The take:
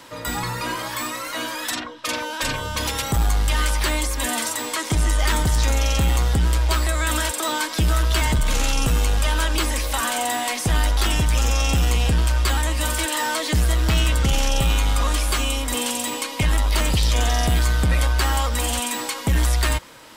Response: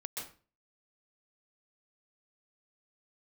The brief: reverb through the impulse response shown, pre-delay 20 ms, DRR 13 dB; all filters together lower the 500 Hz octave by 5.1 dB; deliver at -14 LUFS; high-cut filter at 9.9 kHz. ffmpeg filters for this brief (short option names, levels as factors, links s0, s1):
-filter_complex "[0:a]lowpass=9900,equalizer=f=500:t=o:g=-6.5,asplit=2[s0][s1];[1:a]atrim=start_sample=2205,adelay=20[s2];[s1][s2]afir=irnorm=-1:irlink=0,volume=0.224[s3];[s0][s3]amix=inputs=2:normalize=0,volume=2.37"